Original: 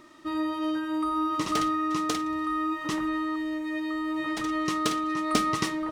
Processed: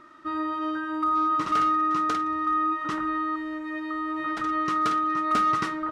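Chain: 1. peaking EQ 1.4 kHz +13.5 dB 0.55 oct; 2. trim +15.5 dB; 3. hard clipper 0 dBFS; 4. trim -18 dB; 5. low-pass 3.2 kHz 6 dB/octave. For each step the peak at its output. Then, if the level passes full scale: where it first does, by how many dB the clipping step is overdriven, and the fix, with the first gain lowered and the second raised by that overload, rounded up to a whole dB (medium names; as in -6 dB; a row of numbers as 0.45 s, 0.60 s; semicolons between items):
-6.5 dBFS, +9.0 dBFS, 0.0 dBFS, -18.0 dBFS, -18.0 dBFS; step 2, 9.0 dB; step 2 +6.5 dB, step 4 -9 dB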